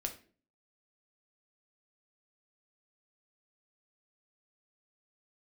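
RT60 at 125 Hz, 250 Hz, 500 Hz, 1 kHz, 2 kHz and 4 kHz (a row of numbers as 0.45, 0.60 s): 0.55, 0.60, 0.50, 0.35, 0.40, 0.30 s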